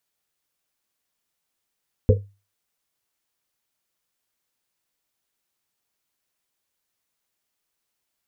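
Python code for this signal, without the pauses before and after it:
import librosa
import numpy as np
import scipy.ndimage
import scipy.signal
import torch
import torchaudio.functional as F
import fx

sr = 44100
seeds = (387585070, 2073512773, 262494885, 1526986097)

y = fx.risset_drum(sr, seeds[0], length_s=1.1, hz=100.0, decay_s=0.31, noise_hz=470.0, noise_width_hz=110.0, noise_pct=35)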